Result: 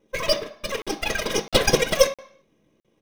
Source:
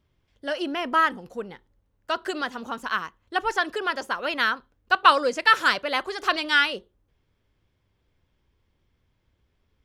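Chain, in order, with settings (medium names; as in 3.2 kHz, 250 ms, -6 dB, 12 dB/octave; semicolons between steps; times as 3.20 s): band-stop 2.5 kHz, Q 5.4; comb 6.9 ms, depth 81%; tape echo 91 ms, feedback 79%, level -22 dB, low-pass 1.2 kHz; wide varispeed 1.86×; flange 0.32 Hz, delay 4.9 ms, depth 4 ms, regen -87%; granular stretch 0.57×, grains 42 ms; full-wave rectifier; short-mantissa float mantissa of 2-bit; reverberation RT60 0.60 s, pre-delay 3 ms, DRR 7.5 dB; crackling interface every 0.66 s, samples 2048, zero, from 0.82 s; trim +2 dB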